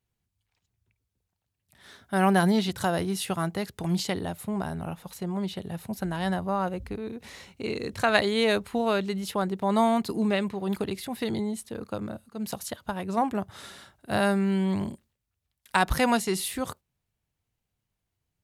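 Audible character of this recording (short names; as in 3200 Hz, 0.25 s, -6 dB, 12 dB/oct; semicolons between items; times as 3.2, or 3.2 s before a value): noise floor -83 dBFS; spectral tilt -5.0 dB/oct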